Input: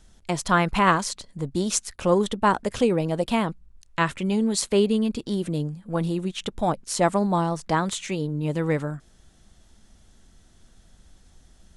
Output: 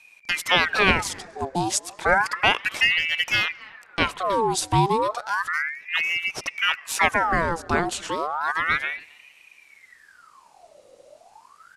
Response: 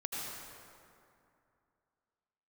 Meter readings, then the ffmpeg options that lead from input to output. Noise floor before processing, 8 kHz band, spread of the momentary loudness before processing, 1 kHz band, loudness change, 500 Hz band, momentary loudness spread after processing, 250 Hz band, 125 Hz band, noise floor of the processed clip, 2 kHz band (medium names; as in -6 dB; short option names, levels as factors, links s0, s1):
-56 dBFS, 0.0 dB, 9 LU, +2.0 dB, +2.0 dB, -3.5 dB, 8 LU, -8.0 dB, -5.0 dB, -55 dBFS, +10.5 dB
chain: -filter_complex "[0:a]asplit=2[s0][s1];[s1]adelay=270,highpass=300,lowpass=3400,asoftclip=type=hard:threshold=0.2,volume=0.0708[s2];[s0][s2]amix=inputs=2:normalize=0,asplit=2[s3][s4];[1:a]atrim=start_sample=2205,lowpass=6000[s5];[s4][s5]afir=irnorm=-1:irlink=0,volume=0.0596[s6];[s3][s6]amix=inputs=2:normalize=0,aeval=exprs='val(0)*sin(2*PI*1500*n/s+1500*0.65/0.32*sin(2*PI*0.32*n/s))':c=same,volume=1.41"